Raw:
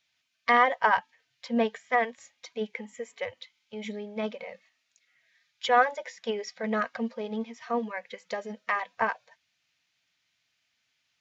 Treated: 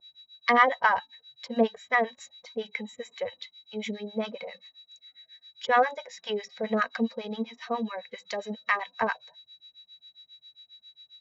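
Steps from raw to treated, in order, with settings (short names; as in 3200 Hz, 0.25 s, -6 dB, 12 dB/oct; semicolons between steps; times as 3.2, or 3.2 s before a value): whine 3900 Hz -51 dBFS; harmonic tremolo 7.4 Hz, depth 100%, crossover 850 Hz; gain +5.5 dB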